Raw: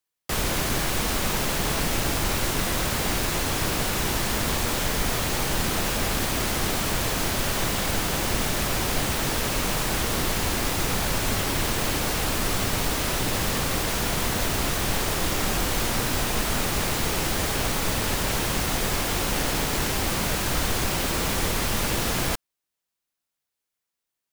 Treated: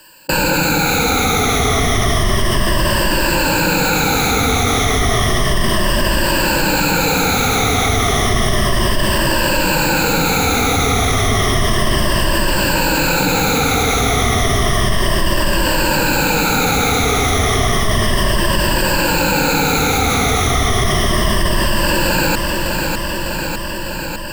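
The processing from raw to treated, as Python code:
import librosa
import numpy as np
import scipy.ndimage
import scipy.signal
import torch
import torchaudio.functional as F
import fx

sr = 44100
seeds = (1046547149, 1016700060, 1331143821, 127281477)

p1 = fx.spec_ripple(x, sr, per_octave=1.3, drift_hz=-0.32, depth_db=22)
p2 = fx.high_shelf(p1, sr, hz=5300.0, db=-8.5)
p3 = p2 + fx.echo_feedback(p2, sr, ms=602, feedback_pct=39, wet_db=-12.0, dry=0)
y = fx.env_flatten(p3, sr, amount_pct=70)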